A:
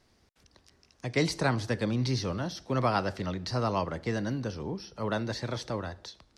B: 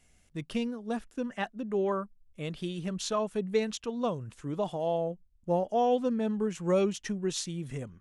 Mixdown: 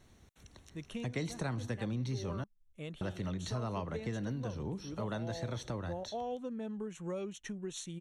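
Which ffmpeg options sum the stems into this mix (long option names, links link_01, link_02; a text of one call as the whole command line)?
ffmpeg -i stem1.wav -i stem2.wav -filter_complex "[0:a]bass=frequency=250:gain=6,treble=frequency=4000:gain=3,volume=1dB,asplit=3[link_01][link_02][link_03];[link_01]atrim=end=2.44,asetpts=PTS-STARTPTS,afade=type=out:start_time=2.436:duration=0.004:curve=hsin[link_04];[link_02]atrim=start=2.44:end=3.01,asetpts=PTS-STARTPTS,volume=0[link_05];[link_03]atrim=start=3.01,asetpts=PTS-STARTPTS,afade=type=in:duration=0.004:curve=hsin[link_06];[link_04][link_05][link_06]concat=n=3:v=0:a=1[link_07];[1:a]adelay=400,volume=-6dB[link_08];[link_07][link_08]amix=inputs=2:normalize=0,asuperstop=centerf=4900:order=4:qfactor=4.2,acompressor=threshold=-38dB:ratio=3" out.wav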